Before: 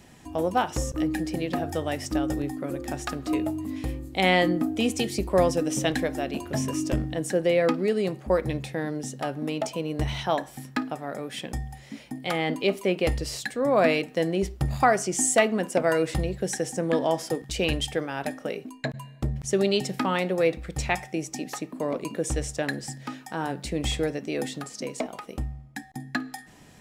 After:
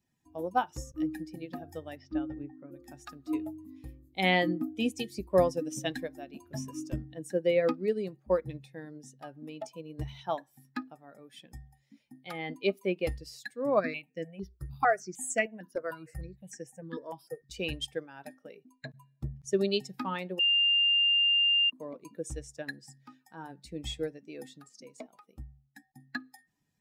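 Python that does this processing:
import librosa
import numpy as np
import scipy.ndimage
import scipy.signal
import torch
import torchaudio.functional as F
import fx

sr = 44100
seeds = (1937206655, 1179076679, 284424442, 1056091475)

y = fx.lowpass(x, sr, hz=fx.line((1.95, 5100.0), (2.71, 2200.0)), slope=24, at=(1.95, 2.71), fade=0.02)
y = fx.phaser_held(y, sr, hz=6.6, low_hz=770.0, high_hz=3800.0, at=(13.79, 17.49), fade=0.02)
y = fx.edit(y, sr, fx.bleep(start_s=20.39, length_s=1.31, hz=2800.0, db=-19.5), tone=tone)
y = fx.bin_expand(y, sr, power=1.5)
y = fx.low_shelf(y, sr, hz=68.0, db=-6.0)
y = fx.upward_expand(y, sr, threshold_db=-37.0, expansion=1.5)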